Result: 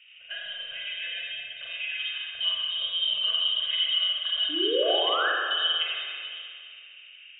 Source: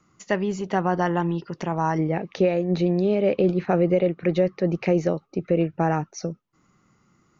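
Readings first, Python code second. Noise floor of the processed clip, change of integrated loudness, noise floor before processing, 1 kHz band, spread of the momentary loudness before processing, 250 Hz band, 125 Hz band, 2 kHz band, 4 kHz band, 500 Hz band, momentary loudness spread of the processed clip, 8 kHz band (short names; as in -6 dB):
-49 dBFS, -2.0 dB, -64 dBFS, -7.0 dB, 8 LU, -20.0 dB, under -40 dB, +3.5 dB, +22.5 dB, -11.0 dB, 16 LU, n/a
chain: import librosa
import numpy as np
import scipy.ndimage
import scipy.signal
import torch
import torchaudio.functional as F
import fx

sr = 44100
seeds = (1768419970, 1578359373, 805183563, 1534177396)

y = fx.tilt_shelf(x, sr, db=9.0, hz=740.0)
y = y + 0.94 * np.pad(y, (int(2.1 * sr / 1000.0), 0))[:len(y)]
y = fx.dynamic_eq(y, sr, hz=230.0, q=1.2, threshold_db=-29.0, ratio=4.0, max_db=7)
y = fx.level_steps(y, sr, step_db=11)
y = fx.dmg_noise_band(y, sr, seeds[0], low_hz=110.0, high_hz=760.0, level_db=-41.0)
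y = fx.freq_invert(y, sr, carrier_hz=3500)
y = fx.spec_paint(y, sr, seeds[1], shape='rise', start_s=4.49, length_s=0.81, low_hz=280.0, high_hz=1800.0, level_db=-29.0)
y = fx.fixed_phaser(y, sr, hz=920.0, stages=6)
y = fx.rev_spring(y, sr, rt60_s=2.2, pass_ms=(37, 43), chirp_ms=45, drr_db=-4.5)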